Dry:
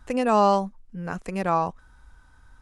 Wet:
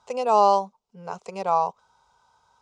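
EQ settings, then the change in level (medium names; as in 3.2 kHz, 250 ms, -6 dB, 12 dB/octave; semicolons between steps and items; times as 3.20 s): cabinet simulation 240–6500 Hz, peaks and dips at 410 Hz +7 dB, 930 Hz +6 dB, 1.8 kHz +8 dB; treble shelf 5.1 kHz +7.5 dB; static phaser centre 730 Hz, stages 4; 0.0 dB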